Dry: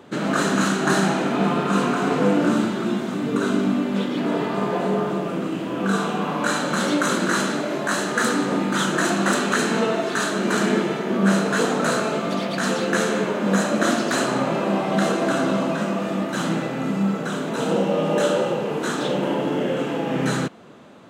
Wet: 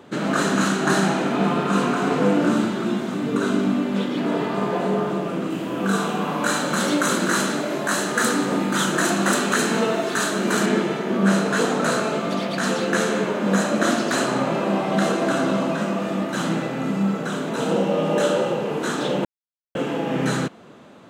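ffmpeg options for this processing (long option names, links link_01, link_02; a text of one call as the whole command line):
ffmpeg -i in.wav -filter_complex "[0:a]asettb=1/sr,asplit=3[link_01][link_02][link_03];[link_01]atrim=end=5.504[link_04];[link_02]atrim=start=5.5:end=10.66,asetpts=PTS-STARTPTS,afade=type=in:duration=0.004:curve=qsin,afade=type=out:start_time=5.156:duration=0.004:curve=qsin,highshelf=frequency=9800:gain=9.5[link_05];[link_03]atrim=start=10.656[link_06];[link_04][link_05]acrossfade=duration=0.004:curve1=hsin:curve2=qsin[link_07];[link_07][link_06]acrossfade=duration=0.004:curve1=qsin:curve2=hsin,asplit=3[link_08][link_09][link_10];[link_08]atrim=end=19.25,asetpts=PTS-STARTPTS,afade=type=out:start_time=19.246:duration=0.004:curve=hsin[link_11];[link_09]atrim=start=19.25:end=19.75,asetpts=PTS-STARTPTS,volume=0[link_12];[link_10]atrim=start=19.75,asetpts=PTS-STARTPTS,afade=type=in:duration=0.004:curve=hsin[link_13];[link_11][link_12][link_13]concat=n=3:v=0:a=1" out.wav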